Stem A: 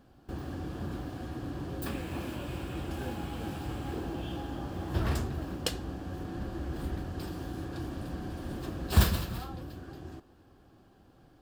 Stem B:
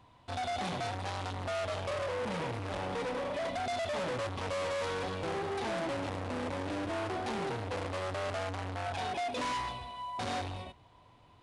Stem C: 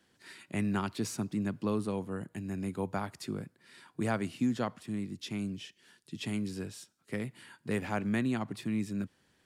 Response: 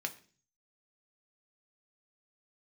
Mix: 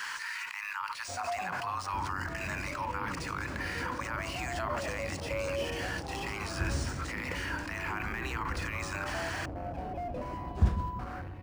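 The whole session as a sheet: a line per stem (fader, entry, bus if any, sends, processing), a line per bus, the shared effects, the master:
-8.0 dB, 1.65 s, no bus, no send, peaking EQ 4.2 kHz -11.5 dB 2.3 oct
-11.0 dB, 0.80 s, bus A, no send, sweeping bell 0.22 Hz 560–2700 Hz +13 dB
0.0 dB, 0.00 s, bus A, no send, steep high-pass 890 Hz 96 dB/octave; level flattener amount 100%
bus A: 0.0 dB, peaking EQ 3.6 kHz -13 dB 0.28 oct; peak limiter -23.5 dBFS, peak gain reduction 9.5 dB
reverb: none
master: tilt EQ -1.5 dB/octave; decimation joined by straight lines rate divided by 3×

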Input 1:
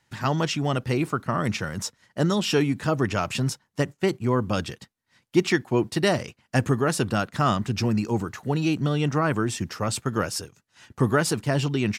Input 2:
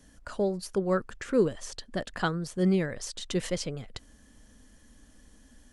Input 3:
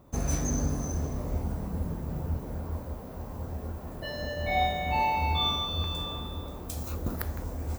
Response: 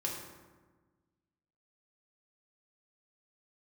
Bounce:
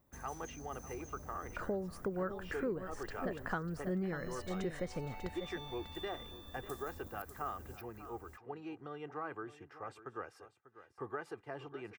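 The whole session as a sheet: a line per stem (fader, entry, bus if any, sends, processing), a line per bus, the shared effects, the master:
-15.5 dB, 0.00 s, no send, echo send -15 dB, three-band isolator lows -14 dB, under 400 Hz, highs -23 dB, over 2.1 kHz; comb 2.5 ms, depth 50%
-2.5 dB, 1.30 s, no send, echo send -11 dB, resonant high shelf 2.4 kHz -10.5 dB, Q 1.5
-18.0 dB, 0.00 s, no send, echo send -5 dB, treble shelf 5.8 kHz +11.5 dB; compression, threshold -30 dBFS, peak gain reduction 10 dB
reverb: none
echo: delay 594 ms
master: compression 4:1, threshold -35 dBFS, peak gain reduction 12.5 dB

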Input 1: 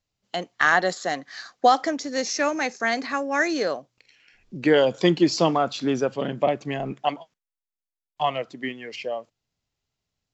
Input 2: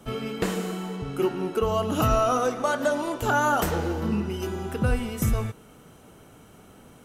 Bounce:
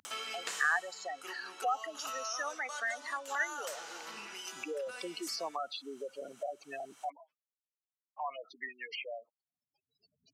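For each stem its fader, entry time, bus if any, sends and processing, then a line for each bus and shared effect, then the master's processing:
-7.5 dB, 0.00 s, no send, spectral gate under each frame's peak -10 dB strong
-5.5 dB, 0.05 s, no send, peaking EQ 6.9 kHz +13.5 dB 1.7 oct; auto duck -12 dB, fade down 1.20 s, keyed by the first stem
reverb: none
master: high-pass 1.1 kHz 12 dB/octave; treble shelf 7.1 kHz -9.5 dB; upward compressor, threshold -33 dBFS

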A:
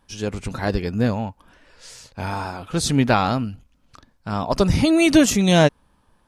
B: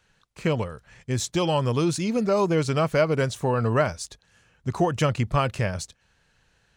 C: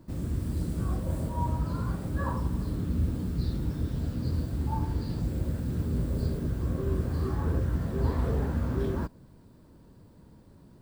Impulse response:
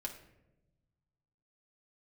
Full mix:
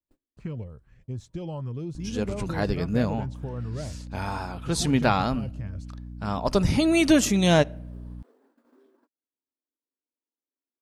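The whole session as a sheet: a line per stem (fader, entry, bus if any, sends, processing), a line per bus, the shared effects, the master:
-5.0 dB, 1.95 s, no bus, send -16.5 dB, hum 60 Hz, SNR 13 dB
-13.5 dB, 0.00 s, bus A, no send, tilt EQ -3.5 dB/octave; LFO notch saw up 2.5 Hz 410–2500 Hz
-13.0 dB, 0.00 s, bus A, no send, steep high-pass 240 Hz 96 dB/octave; compression 10:1, threshold -43 dBFS, peak gain reduction 14.5 dB; auto duck -21 dB, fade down 0.55 s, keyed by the second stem
bus A: 0.0 dB, gate -58 dBFS, range -29 dB; compression 3:1, threshold -31 dBFS, peak gain reduction 8.5 dB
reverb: on, RT60 0.95 s, pre-delay 3 ms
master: none

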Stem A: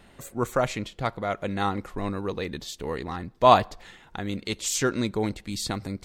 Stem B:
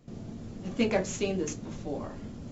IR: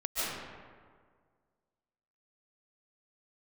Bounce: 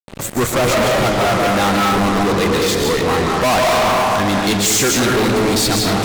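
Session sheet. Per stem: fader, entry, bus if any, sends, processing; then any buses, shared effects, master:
-4.0 dB, 0.00 s, send -5.5 dB, none
-5.0 dB, 0.00 s, no send, reverb removal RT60 1.7 s; low-pass 2.2 kHz 12 dB/octave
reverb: on, RT60 1.8 s, pre-delay 105 ms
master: bass shelf 320 Hz -3 dB; fuzz box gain 38 dB, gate -44 dBFS

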